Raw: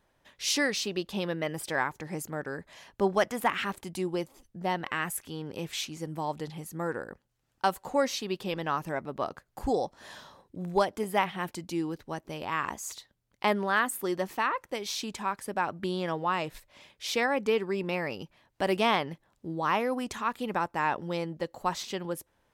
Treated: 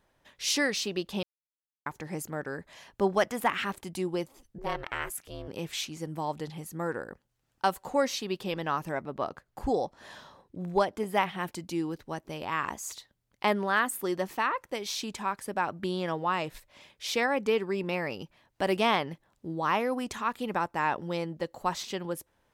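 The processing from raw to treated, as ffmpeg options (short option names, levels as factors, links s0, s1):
-filter_complex "[0:a]asettb=1/sr,asplit=3[s0][s1][s2];[s0]atrim=end=4.584[s3];[s1]atrim=start=4.58:end=5.48,asetpts=PTS-STARTPTS,afade=t=in:d=0.004:c=qsin,afade=t=out:st=0.896:d=0.004:c=qsin,aeval=exprs='val(0)*sin(2*PI*200*n/s)':c=same[s4];[s2]atrim=start=5.476[s5];[s3][s4]acrossfade=d=0.004:c1=hsin:c2=qsin[s6];[s6][s5]acrossfade=d=0.004:c1=qsin:c2=hsin,asettb=1/sr,asplit=3[s7][s8][s9];[s7]atrim=end=9.024[s10];[s8]atrim=start=9.02:end=11.13,asetpts=PTS-STARTPTS,afade=t=in:d=0.004:c=qsin,afade=t=out:st=2.106:d=0.004:c=qsin,highshelf=f=5200:g=-6[s11];[s9]atrim=start=11.126[s12];[s10][s11]acrossfade=d=0.004:c1=hsin:c2=qsin[s13];[s13][s12]acrossfade=d=0.004:c1=qsin:c2=hsin,asplit=3[s14][s15][s16];[s14]atrim=end=1.23,asetpts=PTS-STARTPTS,afade=t=out:st=1.226:d=0.004:c=hsin[s17];[s15]atrim=start=1.23:end=1.86,asetpts=PTS-STARTPTS,volume=0[s18];[s16]atrim=start=1.86,asetpts=PTS-STARTPTS,afade=t=in:d=0.004:c=hsin[s19];[s17][s18][s19]concat=n=3:v=0:a=1"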